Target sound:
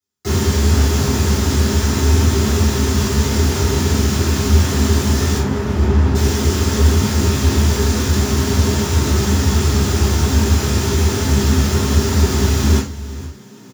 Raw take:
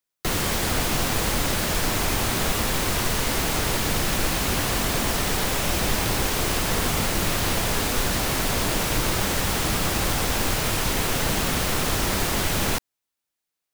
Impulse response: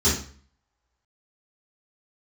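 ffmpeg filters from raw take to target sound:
-filter_complex "[0:a]asettb=1/sr,asplit=3[a][b][c];[a]atrim=end=5.384[d];[b]atrim=start=5.38:end=6.15,asetpts=PTS-STARTPTS,afade=t=in:d=0.004:c=qsin,afade=t=out:st=0.766:d=0.004:c=qsin,adynamicsmooth=sensitivity=2:basefreq=540[e];[c]atrim=start=6.146[f];[d][e]acrossfade=d=0.004:c1=hsin:c2=qsin[g];[g][f]acrossfade=d=0.004:c1=qsin:c2=hsin,asplit=5[h][i][j][k][l];[i]adelay=470,afreqshift=57,volume=-17dB[m];[j]adelay=940,afreqshift=114,volume=-24.3dB[n];[k]adelay=1410,afreqshift=171,volume=-31.7dB[o];[l]adelay=1880,afreqshift=228,volume=-39dB[p];[h][m][n][o][p]amix=inputs=5:normalize=0[q];[1:a]atrim=start_sample=2205,afade=t=out:st=0.16:d=0.01,atrim=end_sample=7497[r];[q][r]afir=irnorm=-1:irlink=0,volume=-13dB"

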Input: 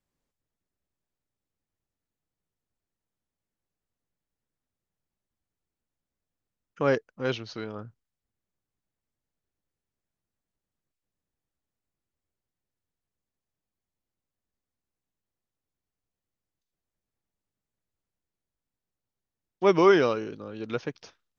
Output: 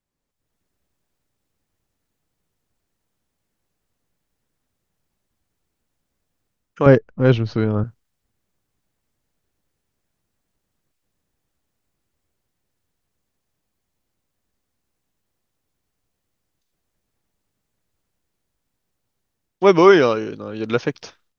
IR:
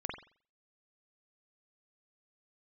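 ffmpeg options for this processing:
-filter_complex "[0:a]dynaudnorm=f=280:g=3:m=12.5dB,asettb=1/sr,asplit=3[a][b][c];[a]atrim=end=6.864[d];[b]atrim=start=6.86:end=7.84,asetpts=PTS-STARTPTS,afade=t=in:d=0.004:c=qsin,afade=t=out:st=0.976:d=0.004:c=qsin,aemphasis=mode=reproduction:type=riaa[e];[c]atrim=start=7.836[f];[d][e]acrossfade=d=0.004:c1=hsin:c2=qsin[g];[g][f]acrossfade=d=0.004:c1=qsin:c2=hsin"

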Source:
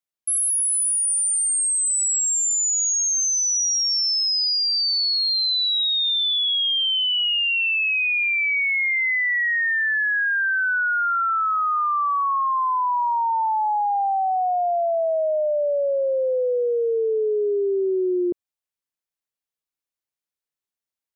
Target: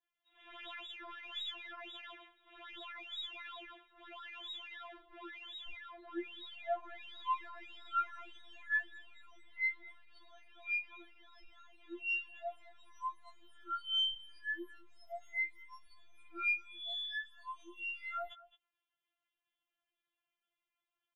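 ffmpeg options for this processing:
-af "asoftclip=type=hard:threshold=-31dB,lowshelf=f=380:t=q:w=1.5:g=-10,aeval=exprs='0.0168*(abs(mod(val(0)/0.0168+3,4)-2)-1)':c=same,aecho=1:1:215:0.0841,aeval=exprs='0.0188*(cos(1*acos(clip(val(0)/0.0188,-1,1)))-cos(1*PI/2))+0.000299*(cos(8*acos(clip(val(0)/0.0188,-1,1)))-cos(8*PI/2))':c=same,lowpass=f=3.3k:t=q:w=0.5098,lowpass=f=3.3k:t=q:w=0.6013,lowpass=f=3.3k:t=q:w=0.9,lowpass=f=3.3k:t=q:w=2.563,afreqshift=-3900,adynamicequalizer=threshold=0.00282:dfrequency=2600:dqfactor=1.5:tfrequency=2600:tqfactor=1.5:attack=5:release=100:ratio=0.375:range=2.5:mode=cutabove:tftype=bell,alimiter=level_in=18dB:limit=-24dB:level=0:latency=1,volume=-18dB,aeval=exprs='0.0178*(cos(1*acos(clip(val(0)/0.0178,-1,1)))-cos(1*PI/2))+0.000178*(cos(8*acos(clip(val(0)/0.0178,-1,1)))-cos(8*PI/2))':c=same,afftfilt=real='re*4*eq(mod(b,16),0)':imag='im*4*eq(mod(b,16),0)':win_size=2048:overlap=0.75,volume=9dB"

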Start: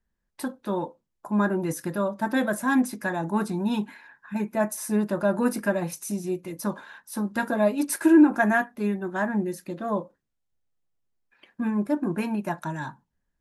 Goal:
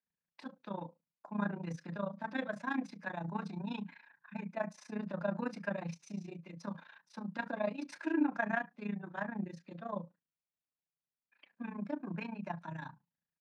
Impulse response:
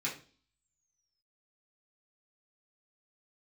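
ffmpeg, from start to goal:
-filter_complex "[0:a]tremolo=f=28:d=0.857,highpass=150,equalizer=f=170:t=q:w=4:g=8,equalizer=f=370:t=q:w=4:g=-10,equalizer=f=2.4k:t=q:w=4:g=5,lowpass=f=5.2k:w=0.5412,lowpass=f=5.2k:w=1.3066,acrossover=split=200[a][b];[a]adelay=30[c];[c][b]amix=inputs=2:normalize=0,volume=-8dB"

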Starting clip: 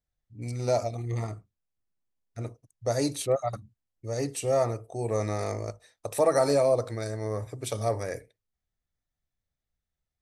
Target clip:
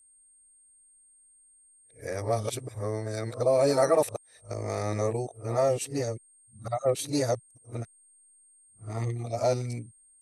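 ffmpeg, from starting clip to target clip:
-af "areverse,aeval=exprs='val(0)+0.00141*sin(2*PI*8600*n/s)':c=same"

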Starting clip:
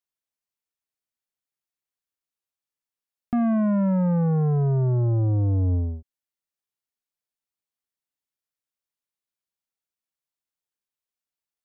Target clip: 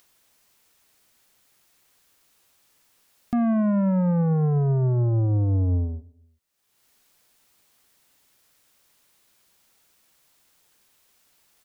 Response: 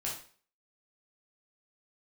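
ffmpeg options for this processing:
-filter_complex "[0:a]asplit=2[a][b];[b]adelay=122,lowpass=f=980:p=1,volume=-22dB,asplit=2[c][d];[d]adelay=122,lowpass=f=980:p=1,volume=0.48,asplit=2[e][f];[f]adelay=122,lowpass=f=980:p=1,volume=0.48[g];[a][c][e][g]amix=inputs=4:normalize=0,acompressor=mode=upward:threshold=-41dB:ratio=2.5"

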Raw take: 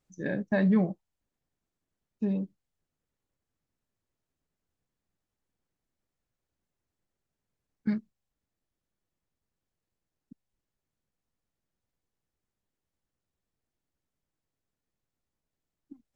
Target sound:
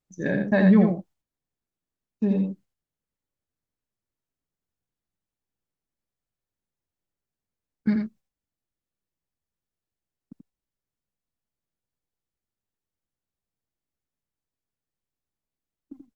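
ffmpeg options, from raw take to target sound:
-filter_complex "[0:a]agate=range=-12dB:threshold=-59dB:ratio=16:detection=peak,asplit=2[a][b];[b]aecho=0:1:84:0.562[c];[a][c]amix=inputs=2:normalize=0,volume=5.5dB"

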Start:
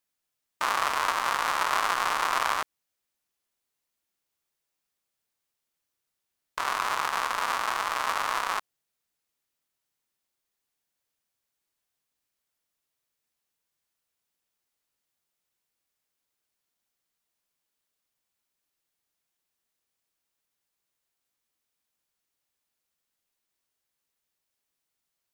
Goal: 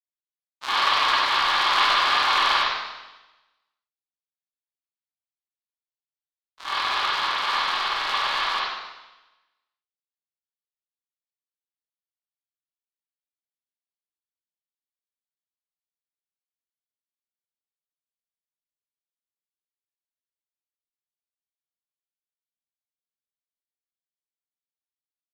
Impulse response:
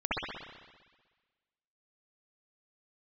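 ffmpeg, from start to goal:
-filter_complex "[0:a]equalizer=f=4k:w=0.91:g=14,agate=range=-33dB:threshold=-19dB:ratio=3:detection=peak[a];[1:a]atrim=start_sample=2205,asetrate=57330,aresample=44100[b];[a][b]afir=irnorm=-1:irlink=0,volume=-4.5dB"

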